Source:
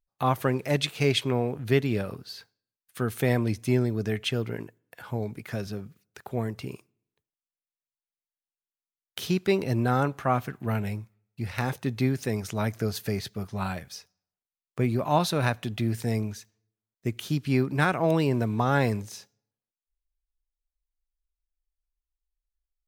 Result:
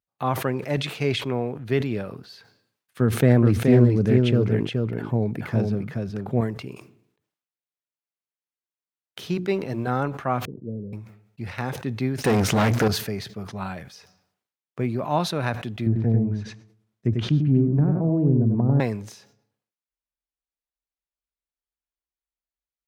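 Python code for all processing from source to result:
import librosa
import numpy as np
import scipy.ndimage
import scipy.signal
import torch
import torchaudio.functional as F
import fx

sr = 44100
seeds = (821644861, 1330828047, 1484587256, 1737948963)

y = fx.chain(x, sr, fx.low_shelf(hz=490.0, db=10.5),
    fx.echo_single(ms=424, db=-4.0),
    fx.doppler_dist(depth_ms=0.21), at=(3.0, 6.41))
y = fx.chain(y, sr, fx.law_mismatch(coded='A'),
    fx.hum_notches(base_hz=60, count=6), at=(9.34, 9.87))
y = fx.chain(y, sr, fx.steep_lowpass(hz=530.0, slope=72),
    fx.low_shelf(hz=140.0, db=-7.0), at=(10.45, 10.93))
y = fx.chain(y, sr, fx.hum_notches(base_hz=60, count=4),
    fx.leveller(passes=5),
    fx.env_flatten(amount_pct=50), at=(12.24, 12.88))
y = fx.chain(y, sr, fx.env_lowpass_down(base_hz=360.0, full_db=-21.5),
    fx.low_shelf(hz=240.0, db=11.0),
    fx.echo_single(ms=96, db=-4.5), at=(15.86, 18.8))
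y = scipy.signal.sosfilt(scipy.signal.butter(2, 100.0, 'highpass', fs=sr, output='sos'), y)
y = fx.high_shelf(y, sr, hz=5100.0, db=-11.5)
y = fx.sustainer(y, sr, db_per_s=90.0)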